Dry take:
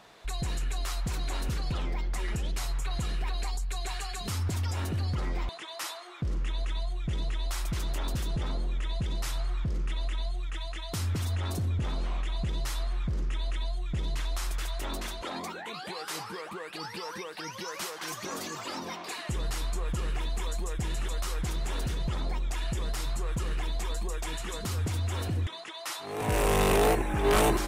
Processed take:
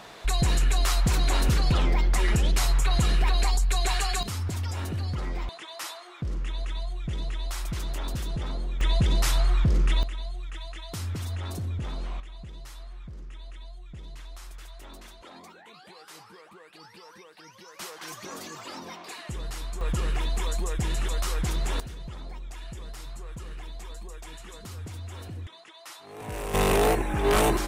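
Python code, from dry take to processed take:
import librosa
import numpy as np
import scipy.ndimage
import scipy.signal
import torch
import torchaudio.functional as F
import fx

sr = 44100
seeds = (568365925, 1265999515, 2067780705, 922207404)

y = fx.gain(x, sr, db=fx.steps((0.0, 9.0), (4.23, 0.0), (8.81, 9.0), (10.03, -2.0), (12.2, -11.0), (17.79, -3.0), (19.81, 4.0), (21.8, -8.0), (26.54, 1.5)))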